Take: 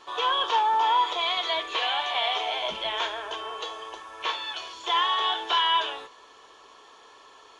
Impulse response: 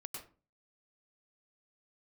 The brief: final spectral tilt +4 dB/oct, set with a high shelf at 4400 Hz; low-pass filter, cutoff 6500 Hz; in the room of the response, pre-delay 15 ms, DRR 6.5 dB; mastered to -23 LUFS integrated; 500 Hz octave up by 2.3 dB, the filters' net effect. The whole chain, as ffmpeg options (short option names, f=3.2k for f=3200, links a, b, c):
-filter_complex "[0:a]lowpass=6.5k,equalizer=f=500:t=o:g=3,highshelf=f=4.4k:g=4.5,asplit=2[a][b];[1:a]atrim=start_sample=2205,adelay=15[c];[b][c]afir=irnorm=-1:irlink=0,volume=-3.5dB[d];[a][d]amix=inputs=2:normalize=0,volume=0.5dB"